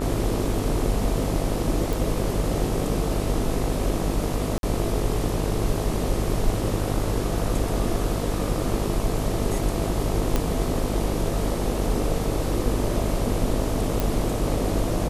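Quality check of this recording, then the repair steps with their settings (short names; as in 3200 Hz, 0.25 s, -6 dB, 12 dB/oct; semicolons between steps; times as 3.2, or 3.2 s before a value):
buzz 50 Hz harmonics 26 -28 dBFS
1.93 pop
4.58–4.63 gap 52 ms
10.36 pop -8 dBFS
14 pop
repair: de-click; de-hum 50 Hz, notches 26; interpolate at 4.58, 52 ms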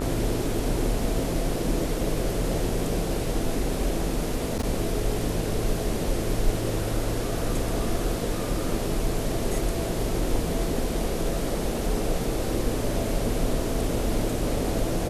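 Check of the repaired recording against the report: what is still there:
none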